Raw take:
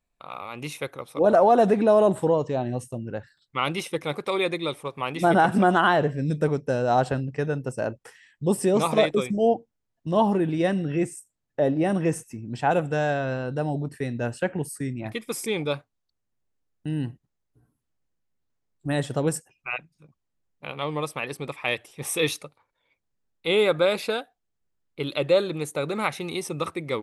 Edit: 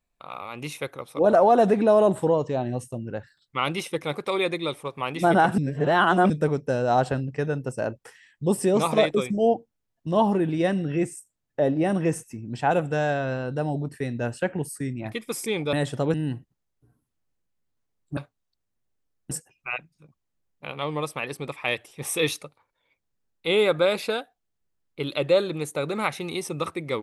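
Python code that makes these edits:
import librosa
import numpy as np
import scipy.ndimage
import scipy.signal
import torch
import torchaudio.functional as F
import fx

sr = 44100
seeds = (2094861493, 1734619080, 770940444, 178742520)

y = fx.edit(x, sr, fx.reverse_span(start_s=5.58, length_s=0.72),
    fx.swap(start_s=15.73, length_s=1.14, other_s=18.9, other_length_s=0.41), tone=tone)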